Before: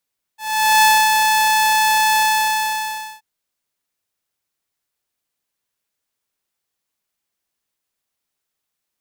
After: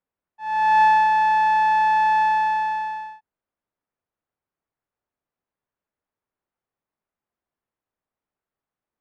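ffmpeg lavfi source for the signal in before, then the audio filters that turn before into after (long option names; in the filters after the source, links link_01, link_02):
-f lavfi -i "aevalsrc='0.473*(2*mod(868*t,1)-1)':duration=2.83:sample_rate=44100,afade=type=in:duration=0.442,afade=type=out:start_time=0.442:duration=0.266:silence=0.631,afade=type=out:start_time=1.82:duration=1.01"
-af "lowpass=1300"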